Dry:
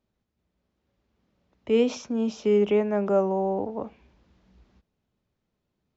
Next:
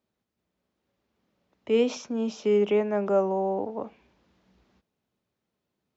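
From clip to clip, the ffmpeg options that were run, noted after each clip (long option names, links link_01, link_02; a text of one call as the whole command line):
ffmpeg -i in.wav -af "highpass=frequency=210:poles=1" out.wav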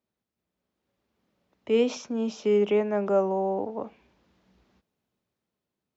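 ffmpeg -i in.wav -af "dynaudnorm=framelen=230:gausssize=7:maxgain=4.5dB,volume=-4.5dB" out.wav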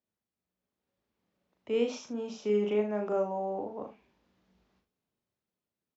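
ffmpeg -i in.wav -af "aecho=1:1:38|77:0.596|0.251,volume=-7.5dB" out.wav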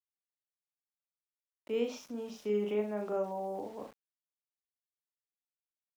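ffmpeg -i in.wav -af "aeval=exprs='val(0)*gte(abs(val(0)),0.00316)':channel_layout=same,volume=-4dB" out.wav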